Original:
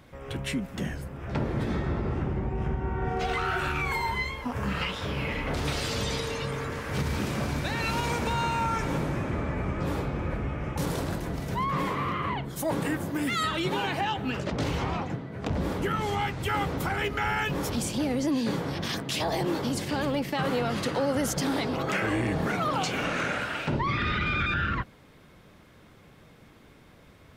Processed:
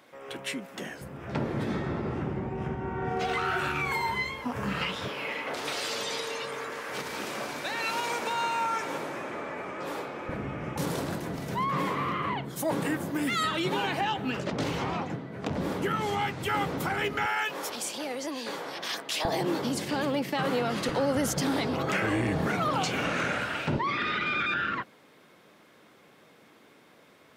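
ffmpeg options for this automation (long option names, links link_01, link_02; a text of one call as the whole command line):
ffmpeg -i in.wav -af "asetnsamples=nb_out_samples=441:pad=0,asendcmd='1.01 highpass f 130;5.08 highpass f 420;10.29 highpass f 140;17.26 highpass f 540;19.25 highpass f 160;20.89 highpass f 68;23.78 highpass f 270',highpass=350" out.wav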